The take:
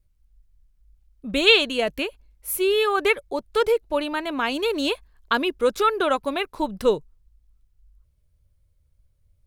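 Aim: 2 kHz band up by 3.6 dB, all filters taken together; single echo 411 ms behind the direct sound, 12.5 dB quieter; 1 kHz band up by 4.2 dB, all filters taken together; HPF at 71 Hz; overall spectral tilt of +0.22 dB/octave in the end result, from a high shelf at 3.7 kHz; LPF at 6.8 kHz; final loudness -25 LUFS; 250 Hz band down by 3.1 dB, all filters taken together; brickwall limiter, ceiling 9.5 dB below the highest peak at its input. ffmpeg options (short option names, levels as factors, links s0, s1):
-af "highpass=71,lowpass=6800,equalizer=f=250:t=o:g=-4.5,equalizer=f=1000:t=o:g=4,equalizer=f=2000:t=o:g=6.5,highshelf=f=3700:g=-6,alimiter=limit=0.266:level=0:latency=1,aecho=1:1:411:0.237,volume=0.841"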